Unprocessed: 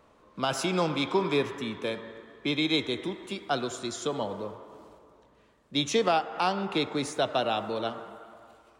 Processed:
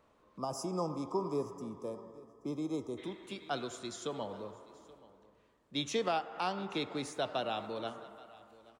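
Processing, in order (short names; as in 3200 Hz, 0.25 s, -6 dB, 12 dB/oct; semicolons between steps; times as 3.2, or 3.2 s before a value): echo 0.828 s -21.5 dB; spectral gain 0.38–2.98, 1300–4700 Hz -22 dB; gain -8 dB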